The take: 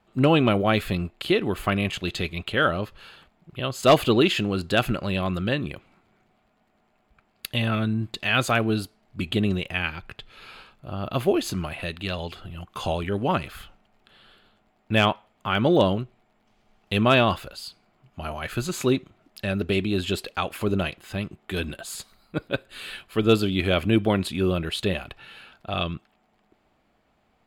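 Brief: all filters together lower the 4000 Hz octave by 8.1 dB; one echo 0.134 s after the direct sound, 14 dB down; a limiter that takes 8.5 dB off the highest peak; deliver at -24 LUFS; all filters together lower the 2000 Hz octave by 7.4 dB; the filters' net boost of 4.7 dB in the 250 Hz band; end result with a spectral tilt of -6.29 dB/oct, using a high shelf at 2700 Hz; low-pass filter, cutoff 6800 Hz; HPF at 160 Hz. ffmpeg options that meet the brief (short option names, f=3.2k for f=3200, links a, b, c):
-af "highpass=160,lowpass=6.8k,equalizer=f=250:t=o:g=7.5,equalizer=f=2k:t=o:g=-7,highshelf=f=2.7k:g=-5,equalizer=f=4k:t=o:g=-3.5,alimiter=limit=-12.5dB:level=0:latency=1,aecho=1:1:134:0.2,volume=2dB"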